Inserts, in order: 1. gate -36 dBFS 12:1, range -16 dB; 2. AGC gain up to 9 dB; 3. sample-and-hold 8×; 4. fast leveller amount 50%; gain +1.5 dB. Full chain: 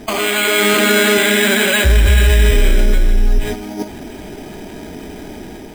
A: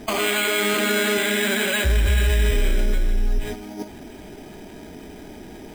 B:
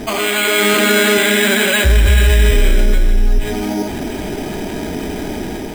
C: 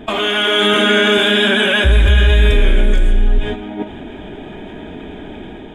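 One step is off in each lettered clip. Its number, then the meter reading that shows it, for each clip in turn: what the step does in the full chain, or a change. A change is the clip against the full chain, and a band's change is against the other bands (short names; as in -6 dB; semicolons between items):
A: 2, loudness change -8.0 LU; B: 1, momentary loudness spread change -8 LU; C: 3, 8 kHz band -14.0 dB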